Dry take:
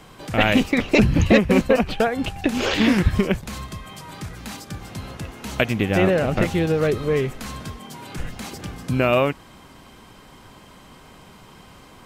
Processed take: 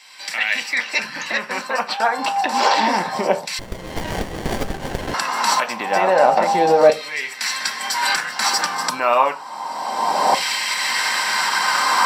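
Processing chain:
camcorder AGC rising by 22 dB per second
high-pass filter 98 Hz 6 dB per octave
brickwall limiter −11 dBFS, peak gain reduction 11.5 dB
auto-filter high-pass saw down 0.29 Hz 670–2,400 Hz
convolution reverb RT60 0.25 s, pre-delay 3 ms, DRR 4.5 dB
0:03.59–0:05.14: windowed peak hold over 33 samples

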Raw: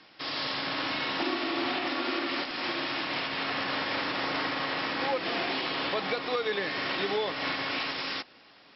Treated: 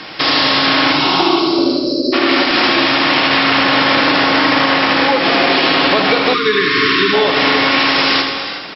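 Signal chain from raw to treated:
0:00.92–0:01.59: phaser with its sweep stopped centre 360 Hz, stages 8
downward compressor 6 to 1, threshold −36 dBFS, peak gain reduction 10.5 dB
0:01.40–0:02.13: time-frequency box erased 640–3,900 Hz
repeating echo 77 ms, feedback 57%, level −7 dB
reverb whose tail is shaped and stops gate 400 ms rising, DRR 9 dB
0:06.33–0:07.13: gain on a spectral selection 470–970 Hz −29 dB
boost into a limiter +25.5 dB
level −1 dB

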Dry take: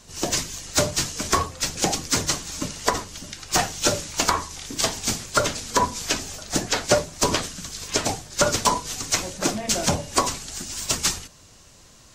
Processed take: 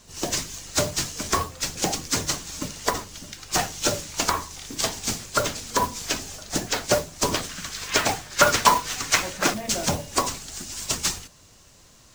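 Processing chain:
0:07.49–0:09.54: parametric band 1,700 Hz +10.5 dB 2.2 octaves
noise that follows the level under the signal 15 dB
level −2.5 dB

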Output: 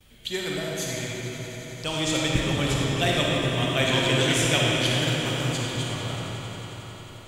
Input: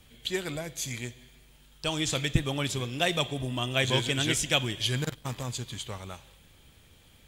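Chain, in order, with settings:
noise gate with hold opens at −48 dBFS
on a send: echo that builds up and dies away 90 ms, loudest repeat 5, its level −17.5 dB
on the sum: comb and all-pass reverb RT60 4.2 s, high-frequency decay 0.6×, pre-delay 10 ms, DRR −4 dB

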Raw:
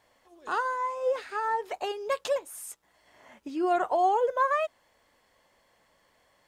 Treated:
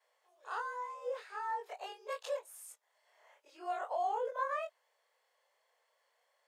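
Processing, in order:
every overlapping window played backwards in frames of 56 ms
Butterworth high-pass 440 Hz 48 dB per octave
level −7 dB

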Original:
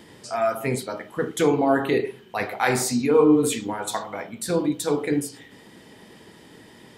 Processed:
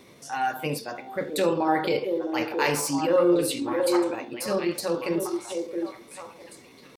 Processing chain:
echo through a band-pass that steps 665 ms, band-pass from 330 Hz, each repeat 1.4 octaves, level −2 dB
dynamic equaliser 3,800 Hz, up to +5 dB, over −45 dBFS, Q 1.3
pitch shifter +2.5 semitones
level −4 dB

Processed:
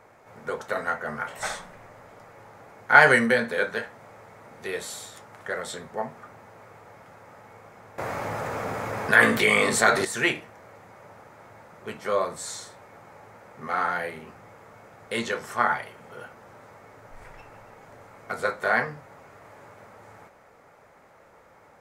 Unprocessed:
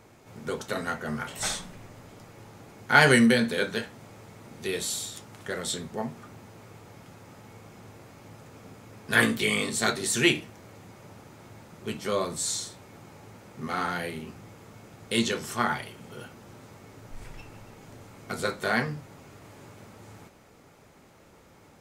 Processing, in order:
flat-topped bell 1,000 Hz +11 dB 2.5 octaves
0:07.98–0:10.05: envelope flattener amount 50%
level −6.5 dB

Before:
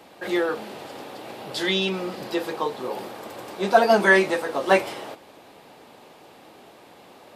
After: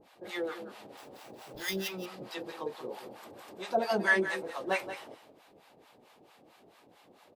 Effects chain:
pitch vibrato 1.2 Hz 13 cents
0:00.97–0:01.88: sample-rate reduction 8,500 Hz, jitter 0%
two-band tremolo in antiphase 4.5 Hz, depth 100%, crossover 700 Hz
on a send: single-tap delay 179 ms −11.5 dB
on the sum: level −7 dB

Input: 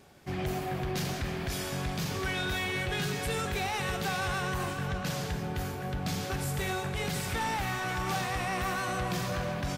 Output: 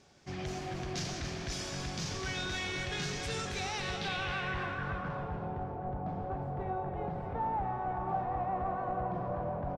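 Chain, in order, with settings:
low-pass filter sweep 6,000 Hz → 810 Hz, 0:03.66–0:05.35
echo with shifted repeats 272 ms, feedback 44%, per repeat −38 Hz, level −8.5 dB
level −6 dB

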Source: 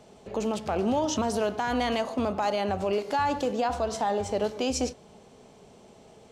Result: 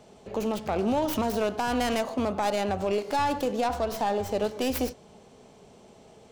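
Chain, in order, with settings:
stylus tracing distortion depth 0.25 ms

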